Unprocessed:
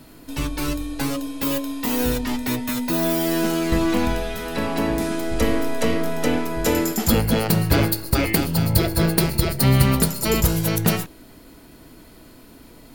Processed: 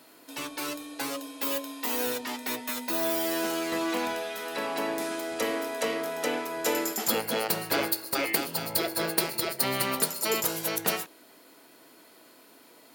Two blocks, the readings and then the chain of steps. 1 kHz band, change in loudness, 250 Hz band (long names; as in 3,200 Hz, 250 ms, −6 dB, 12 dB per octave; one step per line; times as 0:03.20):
−4.5 dB, −7.5 dB, −13.0 dB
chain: high-pass filter 440 Hz 12 dB per octave
level −4 dB